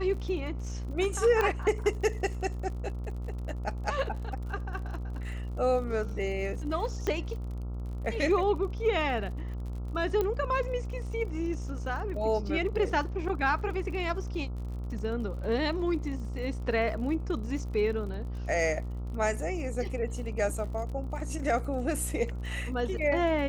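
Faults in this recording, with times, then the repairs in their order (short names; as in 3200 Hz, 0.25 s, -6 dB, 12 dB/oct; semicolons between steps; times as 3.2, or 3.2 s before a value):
buzz 60 Hz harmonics 23 -35 dBFS
crackle 48/s -40 dBFS
1.41 pop -15 dBFS
7.07 pop -17 dBFS
10.21 pop -17 dBFS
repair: de-click; de-hum 60 Hz, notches 23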